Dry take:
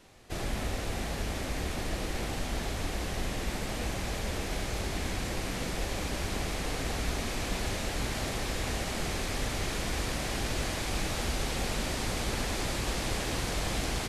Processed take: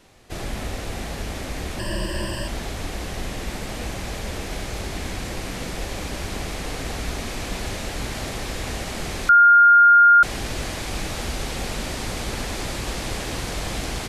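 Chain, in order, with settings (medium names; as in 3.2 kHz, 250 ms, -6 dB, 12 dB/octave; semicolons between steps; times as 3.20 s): 1.79–2.48 s: rippled EQ curve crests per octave 1.3, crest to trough 17 dB; 9.29–10.23 s: bleep 1.41 kHz -12 dBFS; trim +3.5 dB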